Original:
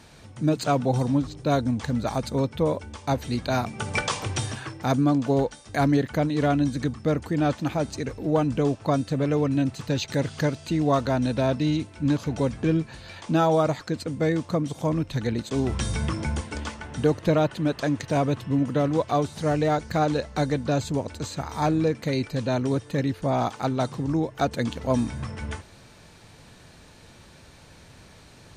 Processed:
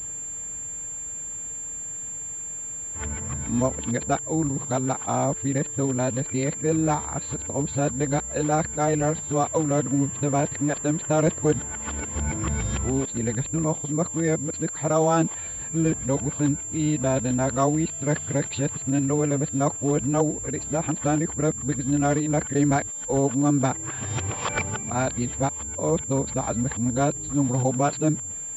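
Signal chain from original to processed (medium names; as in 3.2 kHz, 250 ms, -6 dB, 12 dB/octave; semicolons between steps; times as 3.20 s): reverse the whole clip; class-D stage that switches slowly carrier 7.3 kHz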